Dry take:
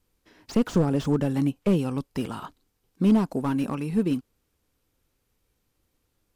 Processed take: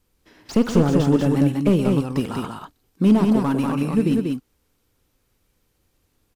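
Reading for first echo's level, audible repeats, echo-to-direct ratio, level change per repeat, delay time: −15.0 dB, 3, −3.0 dB, repeats not evenly spaced, 48 ms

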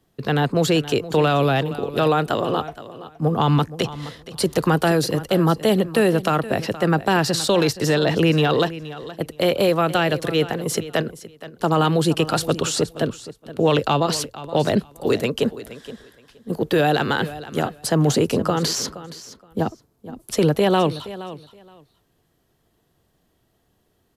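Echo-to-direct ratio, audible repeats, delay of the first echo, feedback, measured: −15.5 dB, 2, 471 ms, 18%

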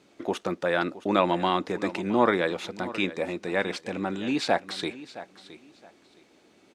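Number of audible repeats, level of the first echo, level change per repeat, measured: 2, −16.0 dB, −12.5 dB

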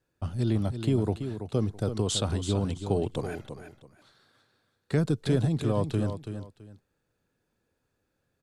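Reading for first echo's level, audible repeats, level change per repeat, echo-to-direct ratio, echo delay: −9.0 dB, 2, −12.5 dB, −9.0 dB, 331 ms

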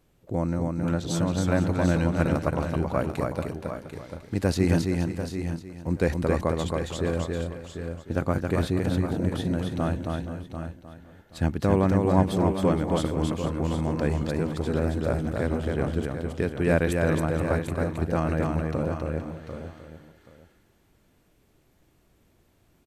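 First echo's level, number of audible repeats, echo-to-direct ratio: −3.5 dB, 7, −2.0 dB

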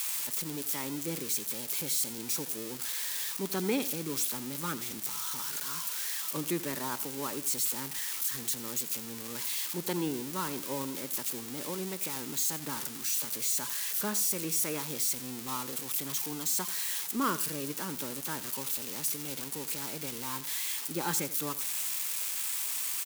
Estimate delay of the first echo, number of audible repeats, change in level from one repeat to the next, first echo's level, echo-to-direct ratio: 86 ms, 2, −11.5 dB, −16.0 dB, −15.5 dB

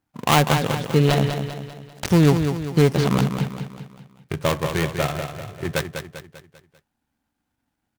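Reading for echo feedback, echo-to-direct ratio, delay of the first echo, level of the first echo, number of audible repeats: 47%, −6.5 dB, 197 ms, −7.5 dB, 5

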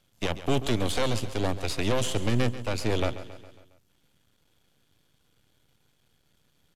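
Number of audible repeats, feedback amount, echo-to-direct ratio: 4, 54%, −12.5 dB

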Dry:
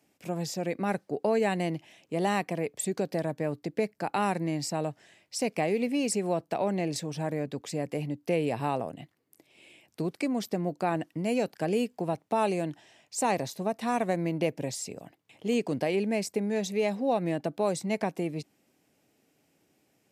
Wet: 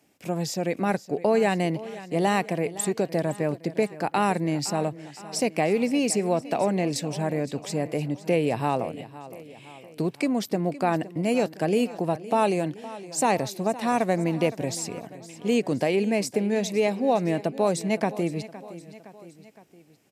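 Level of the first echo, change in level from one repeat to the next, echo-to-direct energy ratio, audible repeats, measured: −16.5 dB, −5.0 dB, −15.0 dB, 3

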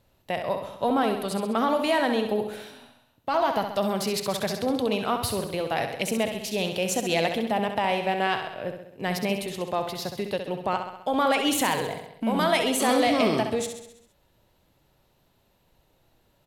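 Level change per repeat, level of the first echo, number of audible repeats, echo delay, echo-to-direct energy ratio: −4.5 dB, −7.5 dB, 6, 66 ms, −5.5 dB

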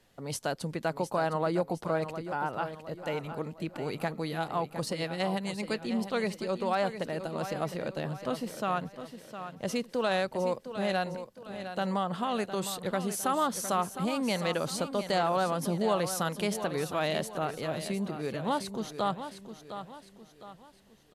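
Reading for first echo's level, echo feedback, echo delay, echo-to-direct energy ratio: −10.5 dB, 41%, 709 ms, −9.5 dB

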